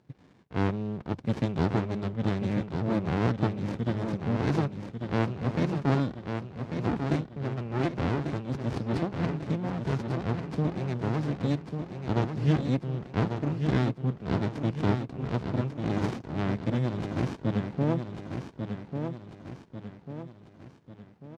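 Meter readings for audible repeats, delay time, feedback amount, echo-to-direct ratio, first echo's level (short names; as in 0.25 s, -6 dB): 5, 1.144 s, 46%, -5.5 dB, -6.5 dB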